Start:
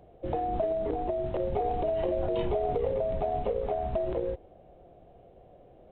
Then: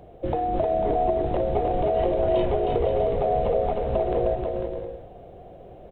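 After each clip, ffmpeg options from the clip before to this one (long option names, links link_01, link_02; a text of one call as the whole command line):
ffmpeg -i in.wav -filter_complex "[0:a]acompressor=threshold=-32dB:ratio=2,asplit=2[link_01][link_02];[link_02]aecho=0:1:310|496|607.6|674.6|714.7:0.631|0.398|0.251|0.158|0.1[link_03];[link_01][link_03]amix=inputs=2:normalize=0,volume=8dB" out.wav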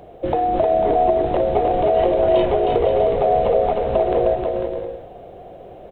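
ffmpeg -i in.wav -af "lowshelf=frequency=220:gain=-8.5,volume=7.5dB" out.wav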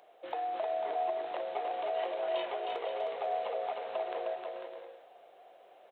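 ffmpeg -i in.wav -af "highpass=1000,volume=-8.5dB" out.wav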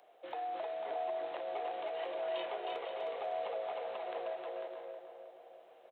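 ffmpeg -i in.wav -filter_complex "[0:a]acrossover=split=370|900|1800[link_01][link_02][link_03][link_04];[link_02]alimiter=level_in=10.5dB:limit=-24dB:level=0:latency=1,volume=-10.5dB[link_05];[link_01][link_05][link_03][link_04]amix=inputs=4:normalize=0,asplit=2[link_06][link_07];[link_07]adelay=316,lowpass=frequency=1900:poles=1,volume=-7dB,asplit=2[link_08][link_09];[link_09]adelay=316,lowpass=frequency=1900:poles=1,volume=0.53,asplit=2[link_10][link_11];[link_11]adelay=316,lowpass=frequency=1900:poles=1,volume=0.53,asplit=2[link_12][link_13];[link_13]adelay=316,lowpass=frequency=1900:poles=1,volume=0.53,asplit=2[link_14][link_15];[link_15]adelay=316,lowpass=frequency=1900:poles=1,volume=0.53,asplit=2[link_16][link_17];[link_17]adelay=316,lowpass=frequency=1900:poles=1,volume=0.53[link_18];[link_06][link_08][link_10][link_12][link_14][link_16][link_18]amix=inputs=7:normalize=0,volume=-3dB" out.wav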